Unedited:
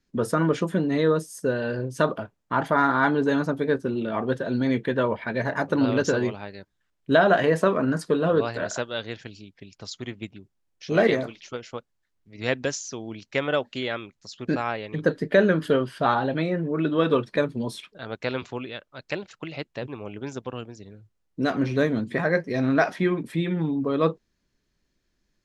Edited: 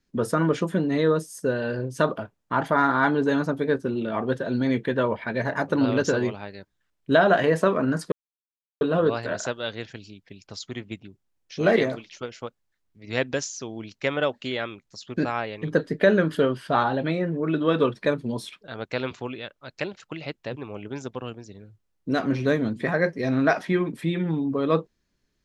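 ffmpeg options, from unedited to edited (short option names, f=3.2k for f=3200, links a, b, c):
-filter_complex "[0:a]asplit=2[a][b];[a]atrim=end=8.12,asetpts=PTS-STARTPTS,afade=t=out:st=8.116:d=0.004:c=hsin,apad=pad_dur=0.69[c];[b]atrim=start=8.12,asetpts=PTS-STARTPTS,afade=t=in:d=0.004:c=hsin[d];[c][d]concat=n=2:v=0:a=1"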